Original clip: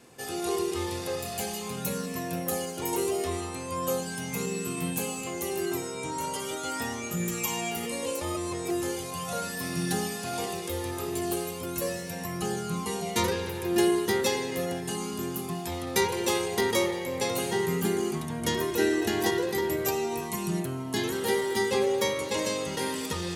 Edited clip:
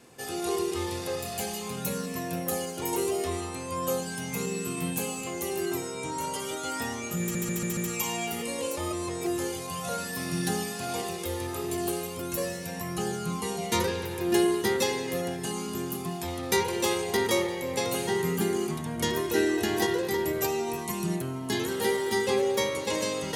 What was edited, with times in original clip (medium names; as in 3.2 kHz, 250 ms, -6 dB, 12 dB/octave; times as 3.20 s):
7.21 s: stutter 0.14 s, 5 plays